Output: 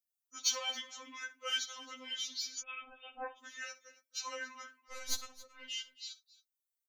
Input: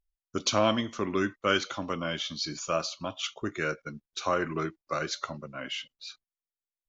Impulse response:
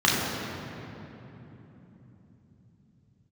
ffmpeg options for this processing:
-filter_complex "[0:a]asplit=2[link_01][link_02];[link_02]asoftclip=type=tanh:threshold=-26dB,volume=-9.5dB[link_03];[link_01][link_03]amix=inputs=2:normalize=0,aderivative,asettb=1/sr,asplit=3[link_04][link_05][link_06];[link_04]atrim=end=4.814[link_07];[link_05]atrim=start=4.81:end=5.67,asetpts=PTS-STARTPTS,afade=type=in:duration=0.004:curve=qsin,afade=type=out:start_time=0.856:duration=0.004:curve=qsin,aeval=exprs='0.075*(cos(1*acos(clip(val(0)/0.075,-1,1)))-cos(1*PI/2))+0.0119*(cos(6*acos(clip(val(0)/0.075,-1,1)))-cos(6*PI/2))+0.00237*(cos(7*acos(clip(val(0)/0.075,-1,1)))-cos(7*PI/2))+0.00168*(cos(8*acos(clip(val(0)/0.075,-1,1)))-cos(8*PI/2))':channel_layout=same[link_08];[link_06]atrim=start=5.666[link_09];[link_07][link_08]acrossfade=duration=0.004:curve1=hsin:curve2=qsin[link_10];[link_10][link_09]acrossfade=duration=0.004:curve1=qsin:curve2=hsin,asplit=2[link_11][link_12];[link_12]aecho=0:1:63|273:0.141|0.112[link_13];[link_11][link_13]amix=inputs=2:normalize=0,asettb=1/sr,asplit=3[link_14][link_15][link_16];[link_14]atrim=end=2.604[link_17];[link_15]atrim=start=2.6:end=3.38,asetpts=PTS-STARTPTS,afade=type=in:duration=0.004:curve=qsin,afade=type=out:start_time=0.776:duration=0.004:curve=qsin,lowpass=frequency=3200:width_type=q:width=0.5098,lowpass=frequency=3200:width_type=q:width=0.6013,lowpass=frequency=3200:width_type=q:width=0.9,lowpass=frequency=3200:width_type=q:width=2.563,afreqshift=-3800[link_18];[link_16]atrim=start=3.376[link_19];[link_17][link_18]acrossfade=duration=0.004:curve1=hsin:curve2=qsin[link_20];[link_20][link_19]acrossfade=duration=0.004:curve1=qsin:curve2=hsin,afftfilt=real='re*3.46*eq(mod(b,12),0)':imag='im*3.46*eq(mod(b,12),0)':win_size=2048:overlap=0.75,volume=2.5dB"

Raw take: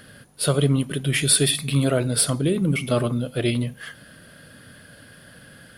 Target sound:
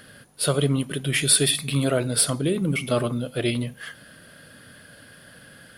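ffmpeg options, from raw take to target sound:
ffmpeg -i in.wav -af "lowshelf=frequency=240:gain=-4.5" out.wav

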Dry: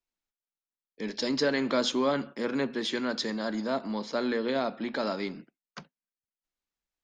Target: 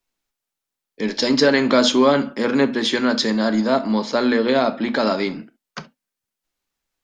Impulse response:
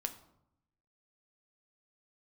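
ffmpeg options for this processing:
-filter_complex "[0:a]asplit=2[link_01][link_02];[1:a]atrim=start_sample=2205,atrim=end_sample=3087,asetrate=39690,aresample=44100[link_03];[link_02][link_03]afir=irnorm=-1:irlink=0,volume=5.5dB[link_04];[link_01][link_04]amix=inputs=2:normalize=0,volume=2dB"

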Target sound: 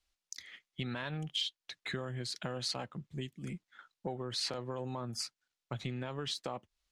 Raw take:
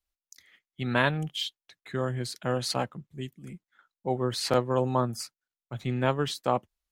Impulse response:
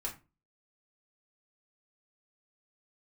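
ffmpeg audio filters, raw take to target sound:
-filter_complex "[0:a]asplit=2[link_01][link_02];[link_02]asoftclip=type=tanh:threshold=-20.5dB,volume=-10.5dB[link_03];[link_01][link_03]amix=inputs=2:normalize=0,alimiter=limit=-18dB:level=0:latency=1:release=54,acompressor=threshold=-39dB:ratio=6,crystalizer=i=3:c=0,lowpass=4500,volume=2dB"

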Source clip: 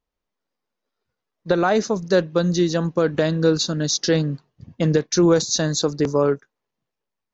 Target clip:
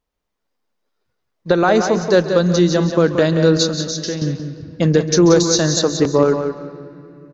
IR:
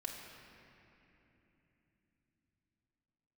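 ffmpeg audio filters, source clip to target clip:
-filter_complex "[0:a]asettb=1/sr,asplit=3[link_01][link_02][link_03];[link_01]atrim=end=3.654[link_04];[link_02]atrim=start=3.65:end=4.22,asetpts=PTS-STARTPTS,afade=type=in:duration=0.004:curve=qsin,afade=type=out:start_time=0.566:duration=0.004:curve=qsin,acompressor=threshold=-28dB:ratio=4[link_05];[link_03]atrim=start=4.216[link_06];[link_04][link_05]acrossfade=duration=0.004:curve1=hsin:curve2=qsin[link_07];[link_07][link_06]acrossfade=duration=0.004:curve1=qsin:curve2=hsin,aecho=1:1:179|358|537:0.398|0.0955|0.0229,asplit=2[link_08][link_09];[1:a]atrim=start_sample=2205,adelay=136[link_10];[link_09][link_10]afir=irnorm=-1:irlink=0,volume=-12dB[link_11];[link_08][link_11]amix=inputs=2:normalize=0,volume=4dB"

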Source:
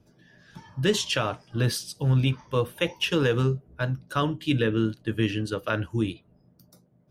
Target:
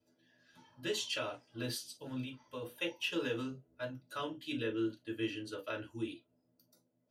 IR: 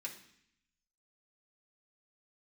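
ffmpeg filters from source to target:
-filter_complex "[0:a]asettb=1/sr,asplit=3[link_01][link_02][link_03];[link_01]atrim=end=2.204[link_04];[link_02]atrim=start=2.2:end=2.62,asetpts=PTS-STARTPTS,afade=type=in:duration=0.004:curve=qsin,afade=type=out:start_time=0.416:duration=0.004:curve=qsin,acompressor=threshold=-26dB:ratio=6[link_05];[link_03]atrim=start=2.616[link_06];[link_04][link_05]acrossfade=duration=0.004:curve1=hsin:curve2=qsin[link_07];[link_07][link_06]acrossfade=duration=0.004:curve1=qsin:curve2=hsin[link_08];[1:a]atrim=start_sample=2205,atrim=end_sample=4410,asetrate=74970,aresample=44100[link_09];[link_08][link_09]afir=irnorm=-1:irlink=0,volume=-3.5dB"

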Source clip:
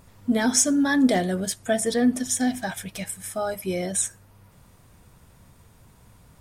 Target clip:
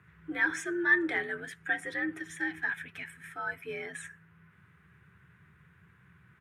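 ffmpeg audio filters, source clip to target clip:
ffmpeg -i in.wav -af "firequalizer=gain_entry='entry(110,0);entry(180,-17);entry(330,0);entry(500,-16);entry(1500,12);entry(4600,-18)':delay=0.05:min_phase=1,afreqshift=65,volume=-6.5dB" out.wav

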